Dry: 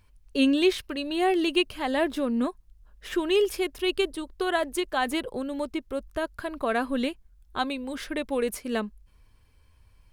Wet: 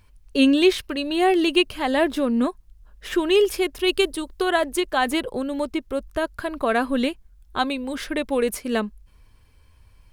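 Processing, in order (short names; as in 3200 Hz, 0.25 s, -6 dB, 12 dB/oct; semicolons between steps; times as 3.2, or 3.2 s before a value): 3.87–4.42 high shelf 4600 Hz +5.5 dB; gain +5 dB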